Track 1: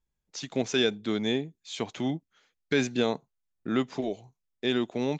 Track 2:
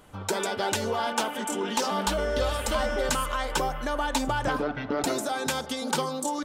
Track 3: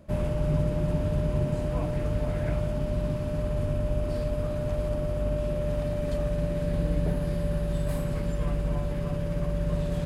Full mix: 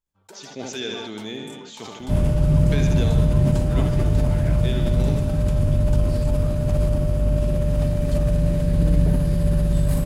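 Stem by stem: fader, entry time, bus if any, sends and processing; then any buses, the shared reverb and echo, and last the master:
-7.5 dB, 0.00 s, no send, echo send -6 dB, high shelf 4100 Hz +6.5 dB
-15.5 dB, 0.00 s, no send, no echo send, expander -27 dBFS; compressor 2:1, threshold -29 dBFS, peak gain reduction 4.5 dB
+1.0 dB, 2.00 s, no send, no echo send, tone controls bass +8 dB, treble +7 dB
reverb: off
echo: feedback echo 75 ms, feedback 59%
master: sustainer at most 29 dB/s

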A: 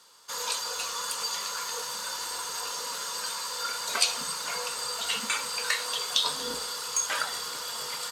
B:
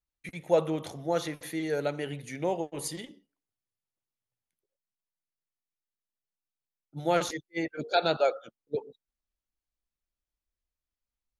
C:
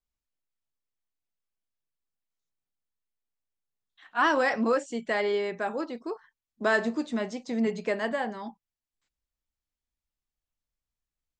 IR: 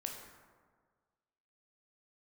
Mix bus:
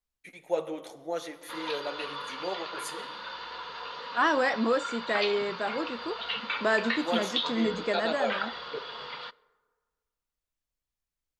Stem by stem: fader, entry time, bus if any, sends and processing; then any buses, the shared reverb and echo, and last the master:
-2.0 dB, 1.20 s, send -18 dB, steep low-pass 3800 Hz 36 dB/oct
-3.0 dB, 0.00 s, send -7 dB, HPF 330 Hz 12 dB/oct; flange 1.8 Hz, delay 5.2 ms, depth 6 ms, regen -35%
-1.0 dB, 0.00 s, no send, dry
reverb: on, RT60 1.6 s, pre-delay 12 ms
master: dry

